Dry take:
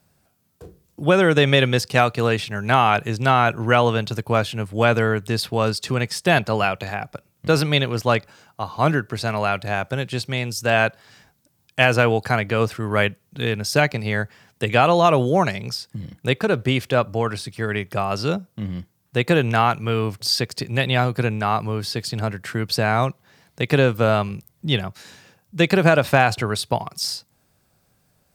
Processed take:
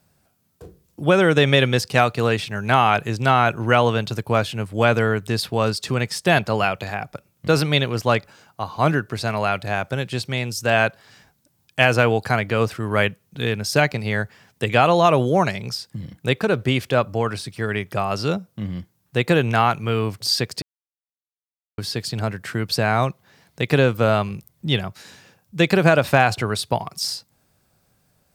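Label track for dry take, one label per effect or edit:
20.620000	21.780000	mute

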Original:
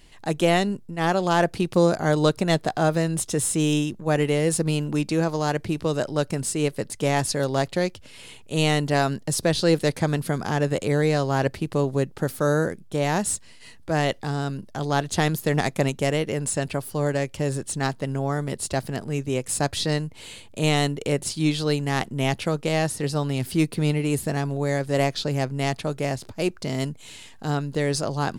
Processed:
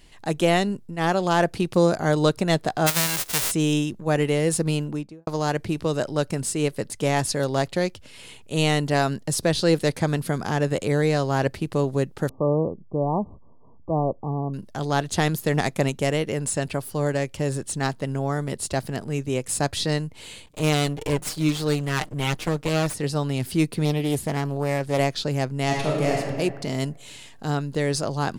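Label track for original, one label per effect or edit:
2.860000	3.500000	formants flattened exponent 0.1
4.720000	5.270000	studio fade out
12.290000	14.540000	brick-wall FIR low-pass 1.2 kHz
20.460000	22.940000	comb filter that takes the minimum delay 6.6 ms
23.850000	24.990000	loudspeaker Doppler distortion depth 0.3 ms
25.650000	26.180000	reverb throw, RT60 1.6 s, DRR -2 dB

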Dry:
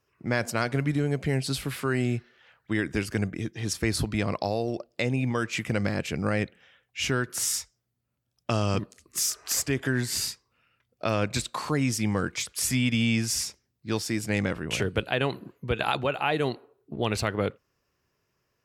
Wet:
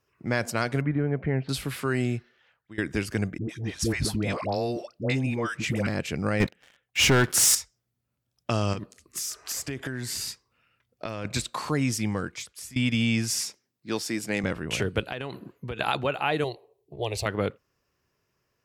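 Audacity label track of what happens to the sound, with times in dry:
0.810000	1.490000	low-pass 2.1 kHz 24 dB/octave
2.040000	2.780000	fade out linear, to -21 dB
3.380000	5.870000	phase dispersion highs, late by 108 ms, half as late at 700 Hz
6.400000	7.550000	waveshaping leveller passes 3
8.730000	11.250000	compression, threshold -28 dBFS
11.930000	12.760000	fade out, to -21.5 dB
13.330000	14.440000	high-pass 190 Hz
15.090000	15.780000	compression, threshold -29 dBFS
16.440000	17.260000	static phaser centre 580 Hz, stages 4

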